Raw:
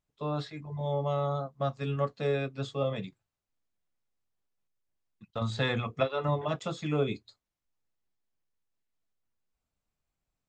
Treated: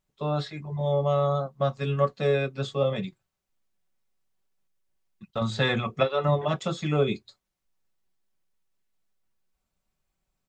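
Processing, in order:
comb filter 5.3 ms, depth 38%
level +4.5 dB

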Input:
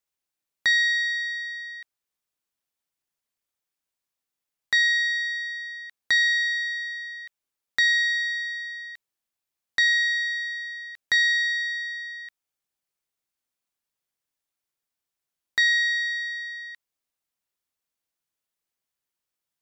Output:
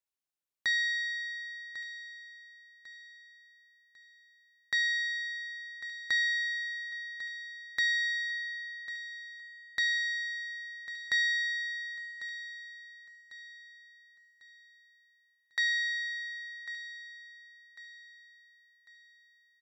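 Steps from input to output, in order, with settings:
0:12.11–0:15.68: high-pass filter 480 Hz
repeating echo 1,098 ms, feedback 39%, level −13.5 dB
level −8.5 dB

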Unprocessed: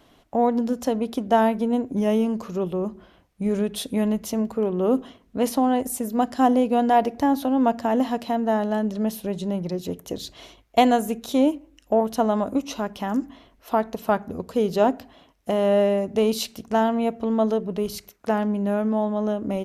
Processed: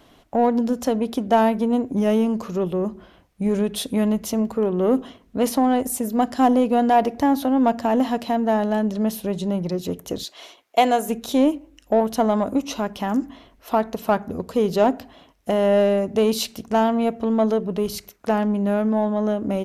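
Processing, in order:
0:10.23–0:11.08: high-pass filter 620 Hz → 290 Hz 12 dB per octave
in parallel at −6.5 dB: soft clipping −22 dBFS, distortion −9 dB

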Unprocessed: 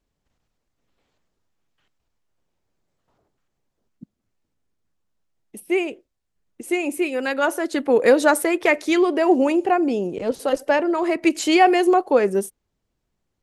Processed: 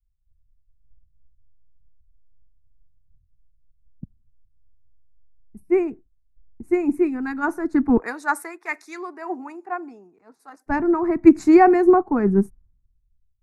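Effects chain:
0:07.97–0:10.66: high-pass filter 720 Hz 12 dB per octave
automatic gain control gain up to 3.5 dB
spectral tilt −4.5 dB per octave
phaser with its sweep stopped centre 1,300 Hz, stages 4
multiband upward and downward expander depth 100%
level −2 dB

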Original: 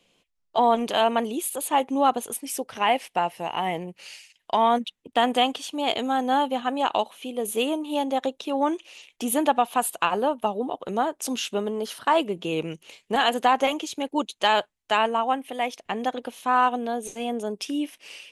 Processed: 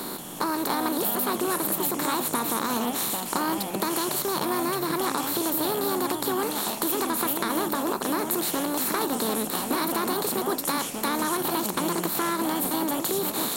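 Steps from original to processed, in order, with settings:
compressor on every frequency bin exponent 0.4
octave-band graphic EQ 125/500/1,000/2,000/4,000/8,000 Hz +10/−11/−6/−11/−8/+6 dB
downward compressor, threshold −28 dBFS, peak gain reduction 10.5 dB
delay with pitch and tempo change per echo 247 ms, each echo −4 semitones, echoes 3, each echo −6 dB
wrong playback speed 33 rpm record played at 45 rpm
level +4 dB

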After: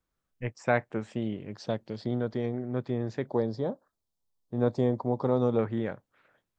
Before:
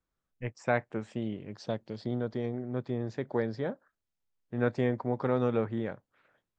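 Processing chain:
0:03.27–0:05.59: flat-topped bell 2,000 Hz −12.5 dB 1.3 octaves
level +2.5 dB

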